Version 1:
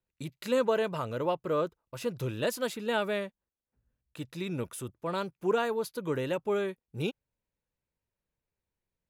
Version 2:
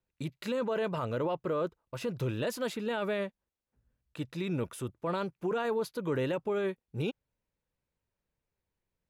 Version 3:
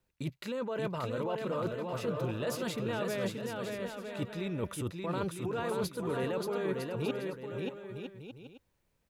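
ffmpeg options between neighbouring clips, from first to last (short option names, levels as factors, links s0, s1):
-af "alimiter=level_in=1.33:limit=0.0631:level=0:latency=1:release=10,volume=0.75,highshelf=f=5500:g=-9,volume=1.33"
-af "areverse,acompressor=threshold=0.01:ratio=10,areverse,aecho=1:1:580|957|1202|1361|1465:0.631|0.398|0.251|0.158|0.1,volume=2.37"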